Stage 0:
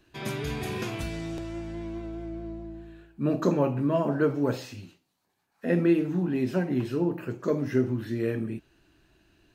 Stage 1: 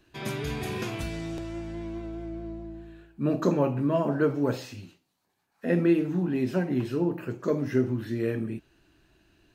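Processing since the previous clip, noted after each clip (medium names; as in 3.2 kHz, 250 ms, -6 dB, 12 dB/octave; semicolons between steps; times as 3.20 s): no audible change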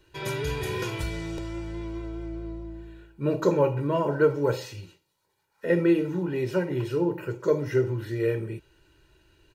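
comb 2.1 ms, depth 84%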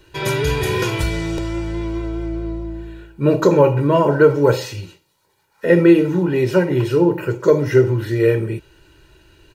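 loudness maximiser +12 dB; trim -1.5 dB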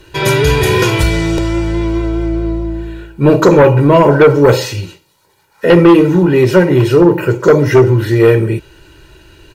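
sine folder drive 4 dB, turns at -2.5 dBFS; trim +1 dB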